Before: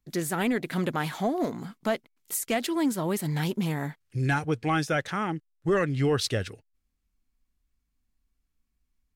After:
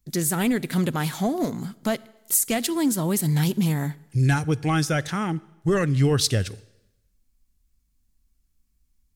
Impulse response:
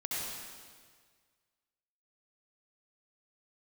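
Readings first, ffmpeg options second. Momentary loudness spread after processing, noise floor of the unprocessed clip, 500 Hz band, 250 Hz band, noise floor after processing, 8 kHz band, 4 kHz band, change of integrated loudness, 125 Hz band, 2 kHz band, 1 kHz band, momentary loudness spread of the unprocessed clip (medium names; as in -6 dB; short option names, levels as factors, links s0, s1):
8 LU, -78 dBFS, +1.0 dB, +4.5 dB, -69 dBFS, +10.0 dB, +5.0 dB, +4.5 dB, +7.5 dB, +1.0 dB, +0.5 dB, 7 LU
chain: -filter_complex "[0:a]bass=f=250:g=8,treble=f=4000:g=10,asplit=2[s0][s1];[1:a]atrim=start_sample=2205,asetrate=79380,aresample=44100[s2];[s1][s2]afir=irnorm=-1:irlink=0,volume=0.106[s3];[s0][s3]amix=inputs=2:normalize=0"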